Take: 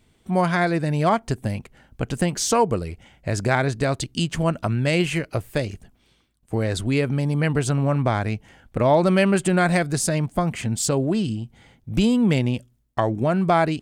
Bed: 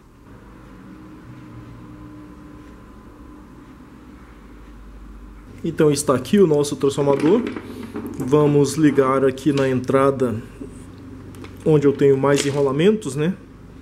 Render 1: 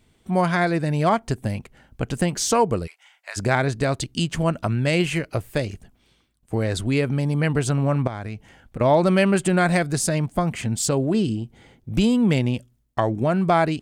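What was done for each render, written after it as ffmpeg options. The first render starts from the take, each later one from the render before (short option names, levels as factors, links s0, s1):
-filter_complex "[0:a]asplit=3[s0][s1][s2];[s0]afade=t=out:st=2.86:d=0.02[s3];[s1]highpass=f=910:w=0.5412,highpass=f=910:w=1.3066,afade=t=in:st=2.86:d=0.02,afade=t=out:st=3.36:d=0.02[s4];[s2]afade=t=in:st=3.36:d=0.02[s5];[s3][s4][s5]amix=inputs=3:normalize=0,asettb=1/sr,asplit=3[s6][s7][s8];[s6]atrim=end=8.074[s9];[s7]atrim=start=8.07:end=8.81,asetpts=PTS-STARTPTS,afade=t=in:d=0.004:c=qsin,afade=t=out:st=0.736:d=0.004:c=qsin,acompressor=threshold=0.0447:ratio=5:attack=3.2:release=140:knee=1:detection=peak[s10];[s8]atrim=start=8.806[s11];[s9][s10]acrossfade=d=0.004:c1=hsin:c2=qsin[s12];[s12][s11]acrossfade=d=0.004:c1=qsin:c2=hsin,asettb=1/sr,asplit=3[s13][s14][s15];[s13]atrim=end=11.144[s16];[s14]atrim=start=11.14:end=11.9,asetpts=PTS-STARTPTS,afade=t=in:d=0.004:c=qsin,afade=t=out:st=0.756:d=0.004:c=qsin,equalizer=f=380:w=1.5:g=7[s17];[s15]atrim=start=11.896[s18];[s16][s17]acrossfade=d=0.004:c1=hsin:c2=qsin[s19];[s19][s18]acrossfade=d=0.004:c1=qsin:c2=hsin"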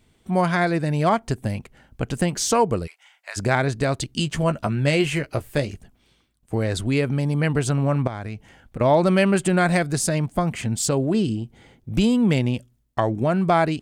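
-filter_complex "[0:a]asettb=1/sr,asplit=3[s0][s1][s2];[s0]atrim=end=4.114[s3];[s1]atrim=start=4.11:end=5.72,asetpts=PTS-STARTPTS,afade=t=in:d=0.004:c=qsin,afade=t=out:st=1.606:d=0.004:c=qsin,asplit=2[s4][s5];[s5]adelay=14,volume=0.355[s6];[s4][s6]amix=inputs=2:normalize=0,atrim=end_sample=71001[s7];[s2]atrim=start=5.716[s8];[s3][s7]acrossfade=d=0.004:c1=hsin:c2=qsin[s9];[s9][s8]acrossfade=d=0.004:c1=qsin:c2=hsin"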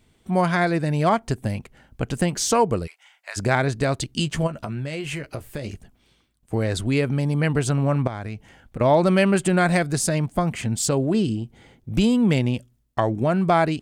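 -filter_complex "[0:a]asplit=3[s0][s1][s2];[s0]afade=t=out:st=4.46:d=0.02[s3];[s1]acompressor=threshold=0.0562:ratio=12:attack=3.2:release=140:knee=1:detection=peak,afade=t=in:st=4.46:d=0.02,afade=t=out:st=5.64:d=0.02[s4];[s2]afade=t=in:st=5.64:d=0.02[s5];[s3][s4][s5]amix=inputs=3:normalize=0"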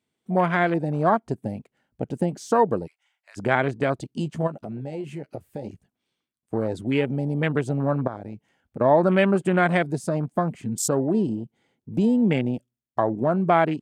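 -af "afwtdn=0.0398,highpass=170"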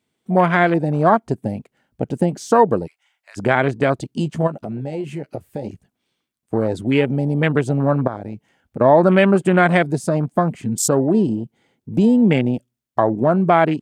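-af "volume=2,alimiter=limit=0.794:level=0:latency=1"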